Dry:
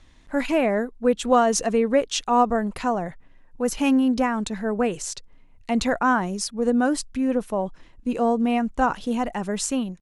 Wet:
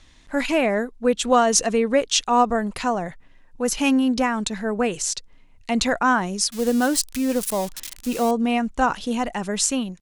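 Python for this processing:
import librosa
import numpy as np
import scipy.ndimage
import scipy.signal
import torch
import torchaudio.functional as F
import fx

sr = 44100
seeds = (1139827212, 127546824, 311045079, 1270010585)

y = fx.crossing_spikes(x, sr, level_db=-25.0, at=(6.52, 8.31))
y = fx.peak_eq(y, sr, hz=5500.0, db=7.0, octaves=2.9)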